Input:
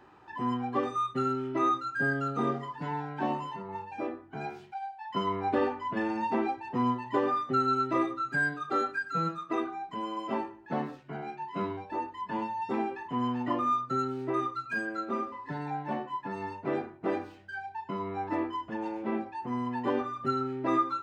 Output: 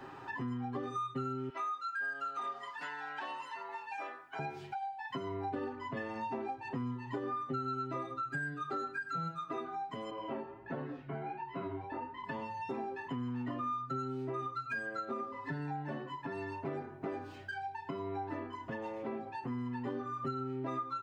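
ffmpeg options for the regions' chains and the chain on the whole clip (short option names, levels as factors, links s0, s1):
-filter_complex "[0:a]asettb=1/sr,asplit=3[s0][s1][s2];[s0]atrim=end=1.494[s3];[s1]atrim=start=1.49:end=4.39,asetpts=PTS-STARTPTS,afade=t=in:d=0.004:c=qsin,afade=t=out:st=2.896:d=0.004:c=qsin,aeval=exprs='val(0)+0.00447*(sin(2*PI*50*n/s)+sin(2*PI*2*50*n/s)/2+sin(2*PI*3*50*n/s)/3+sin(2*PI*4*50*n/s)/4+sin(2*PI*5*50*n/s)/5)':c=same,highpass=1100[s4];[s2]atrim=start=4.386[s5];[s3][s4]acrossfade=d=0.004:c1=hsin:c2=qsin[s6];[s6][s5]acrossfade=d=0.004:c1=qsin:c2=hsin,asettb=1/sr,asplit=3[s7][s8][s9];[s7]atrim=end=10.104[s10];[s8]atrim=start=10.1:end=12.24,asetpts=PTS-STARTPTS,afade=t=in:d=0.004:c=qsin,afade=t=out:st=2.136:d=0.004:c=qsin,lowpass=2900,flanger=delay=15.5:depth=7.1:speed=1.4,aeval=exprs='val(0)+0.000398*(sin(2*PI*60*n/s)+sin(2*PI*2*60*n/s)/2+sin(2*PI*3*60*n/s)/3+sin(2*PI*4*60*n/s)/4+sin(2*PI*5*60*n/s)/5)':c=same[s11];[s9]atrim=start=12.236[s12];[s10][s11]acrossfade=d=0.004:c1=hsin:c2=qsin[s13];[s13][s12]acrossfade=d=0.004:c1=qsin:c2=hsin,acrossover=split=140[s14][s15];[s15]acompressor=threshold=0.00794:ratio=2[s16];[s14][s16]amix=inputs=2:normalize=0,aecho=1:1:7.4:0.75,acompressor=threshold=0.00501:ratio=2.5,volume=2"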